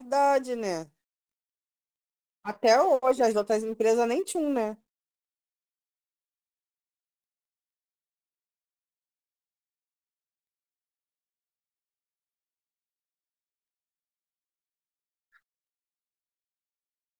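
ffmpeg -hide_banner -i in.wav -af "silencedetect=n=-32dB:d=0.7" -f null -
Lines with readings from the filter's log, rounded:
silence_start: 0.83
silence_end: 2.47 | silence_duration: 1.64
silence_start: 4.72
silence_end: 17.20 | silence_duration: 12.48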